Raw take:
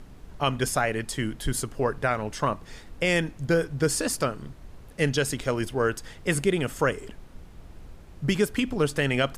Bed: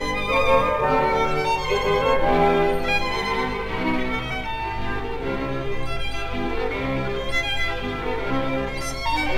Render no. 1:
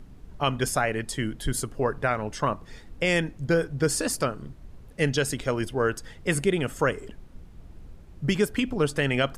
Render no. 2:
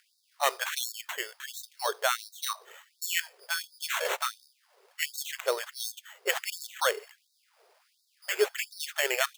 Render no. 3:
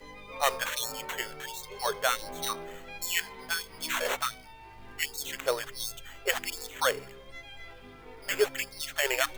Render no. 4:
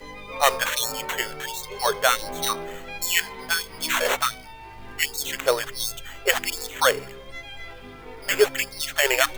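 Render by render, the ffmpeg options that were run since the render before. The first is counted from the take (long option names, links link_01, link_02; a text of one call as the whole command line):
ffmpeg -i in.wav -af "afftdn=noise_reduction=6:noise_floor=-47" out.wav
ffmpeg -i in.wav -af "acrusher=samples=9:mix=1:aa=0.000001,afftfilt=real='re*gte(b*sr/1024,350*pow(3700/350,0.5+0.5*sin(2*PI*1.4*pts/sr)))':imag='im*gte(b*sr/1024,350*pow(3700/350,0.5+0.5*sin(2*PI*1.4*pts/sr)))':win_size=1024:overlap=0.75" out.wav
ffmpeg -i in.wav -i bed.wav -filter_complex "[1:a]volume=-22.5dB[link_01];[0:a][link_01]amix=inputs=2:normalize=0" out.wav
ffmpeg -i in.wav -af "volume=7.5dB" out.wav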